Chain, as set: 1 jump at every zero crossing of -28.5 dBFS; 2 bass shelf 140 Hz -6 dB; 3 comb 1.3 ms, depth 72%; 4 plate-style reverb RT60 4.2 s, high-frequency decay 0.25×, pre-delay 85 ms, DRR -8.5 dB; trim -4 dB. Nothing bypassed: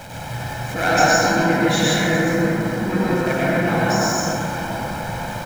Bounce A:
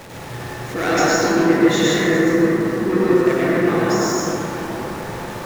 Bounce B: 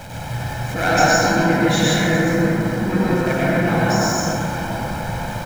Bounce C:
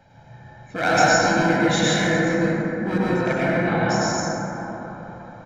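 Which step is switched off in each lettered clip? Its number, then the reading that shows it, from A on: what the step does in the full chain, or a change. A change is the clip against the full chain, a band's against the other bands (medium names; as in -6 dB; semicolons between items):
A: 3, 250 Hz band +5.5 dB; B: 2, 125 Hz band +2.5 dB; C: 1, distortion -13 dB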